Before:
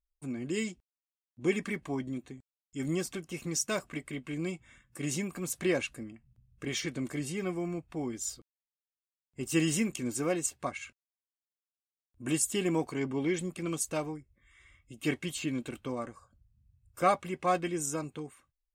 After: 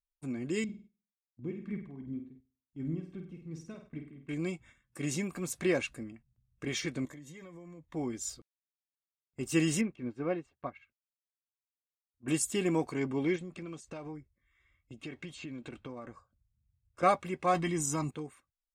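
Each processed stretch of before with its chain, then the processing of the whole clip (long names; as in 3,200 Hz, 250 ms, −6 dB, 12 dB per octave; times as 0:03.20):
0:00.64–0:04.29: drawn EQ curve 200 Hz 0 dB, 590 Hz −12 dB, 3,600 Hz −17 dB, 6,700 Hz −28 dB + amplitude tremolo 2.7 Hz, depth 73% + flutter between parallel walls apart 8.5 metres, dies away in 0.45 s
0:07.05–0:07.94: EQ curve with evenly spaced ripples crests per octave 1.1, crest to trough 10 dB + downward compressor 12 to 1, threshold −45 dBFS
0:09.81–0:12.28: high-frequency loss of the air 380 metres + expander for the loud parts, over −51 dBFS
0:13.36–0:17.03: downward compressor 8 to 1, threshold −38 dBFS + high-frequency loss of the air 84 metres
0:17.54–0:18.11: comb filter 1 ms, depth 58% + envelope flattener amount 50%
whole clip: notch filter 3,000 Hz, Q 16; noise gate −54 dBFS, range −10 dB; high-shelf EQ 10,000 Hz −8 dB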